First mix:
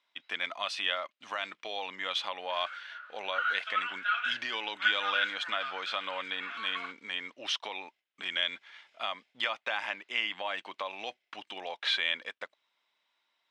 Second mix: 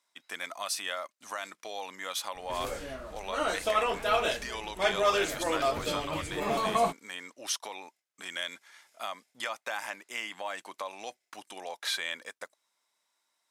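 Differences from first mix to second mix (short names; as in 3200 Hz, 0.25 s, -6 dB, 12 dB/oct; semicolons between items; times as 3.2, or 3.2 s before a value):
background: remove ladder high-pass 1400 Hz, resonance 85%; master: remove synth low-pass 3100 Hz, resonance Q 2.4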